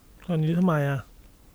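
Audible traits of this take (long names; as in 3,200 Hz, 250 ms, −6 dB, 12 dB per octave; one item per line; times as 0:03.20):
background noise floor −56 dBFS
spectral slope −7.0 dB per octave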